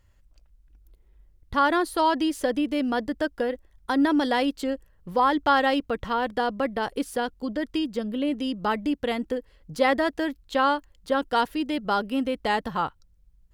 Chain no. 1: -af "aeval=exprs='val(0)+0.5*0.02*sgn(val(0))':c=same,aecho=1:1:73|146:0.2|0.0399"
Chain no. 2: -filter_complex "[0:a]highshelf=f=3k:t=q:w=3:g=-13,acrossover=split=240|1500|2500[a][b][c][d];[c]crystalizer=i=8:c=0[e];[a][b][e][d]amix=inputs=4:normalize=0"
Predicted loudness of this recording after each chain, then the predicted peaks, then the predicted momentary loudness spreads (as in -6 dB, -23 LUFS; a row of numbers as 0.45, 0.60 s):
-24.5, -22.5 LUFS; -8.0, -3.5 dBFS; 22, 10 LU